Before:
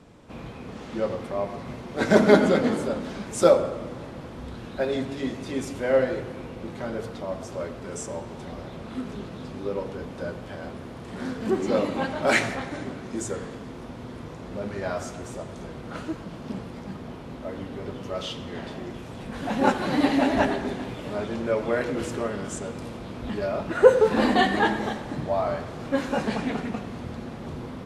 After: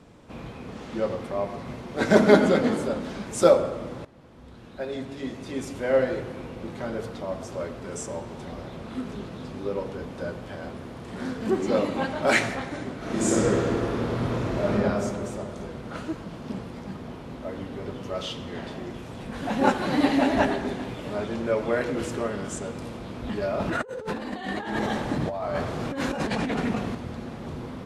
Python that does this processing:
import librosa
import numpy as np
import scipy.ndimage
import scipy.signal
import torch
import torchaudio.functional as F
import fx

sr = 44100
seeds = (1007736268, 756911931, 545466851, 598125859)

y = fx.reverb_throw(x, sr, start_s=12.97, length_s=1.73, rt60_s=2.8, drr_db=-10.5)
y = fx.over_compress(y, sr, threshold_db=-30.0, ratio=-1.0, at=(23.54, 26.95))
y = fx.edit(y, sr, fx.fade_in_from(start_s=4.05, length_s=2.09, floor_db=-16.0), tone=tone)